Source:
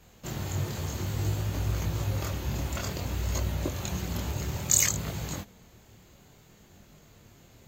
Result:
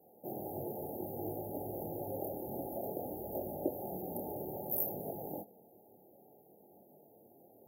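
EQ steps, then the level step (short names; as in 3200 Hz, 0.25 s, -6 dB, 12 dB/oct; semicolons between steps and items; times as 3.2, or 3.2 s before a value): Chebyshev high-pass 380 Hz, order 2; brick-wall FIR band-stop 880–10000 Hz; +1.5 dB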